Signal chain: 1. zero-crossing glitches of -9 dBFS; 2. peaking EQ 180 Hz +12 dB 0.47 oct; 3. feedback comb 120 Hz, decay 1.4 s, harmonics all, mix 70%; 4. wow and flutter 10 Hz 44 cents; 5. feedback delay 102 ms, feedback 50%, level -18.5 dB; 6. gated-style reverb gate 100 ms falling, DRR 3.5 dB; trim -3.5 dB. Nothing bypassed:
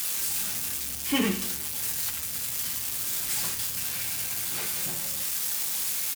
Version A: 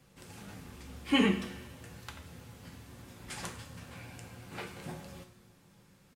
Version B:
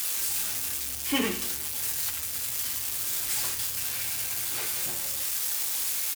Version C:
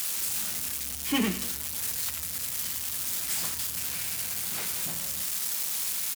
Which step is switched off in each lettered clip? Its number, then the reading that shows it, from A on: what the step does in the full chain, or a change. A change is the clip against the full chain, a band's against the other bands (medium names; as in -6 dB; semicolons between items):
1, crest factor change +8.0 dB; 2, 125 Hz band -4.5 dB; 6, 500 Hz band -2.0 dB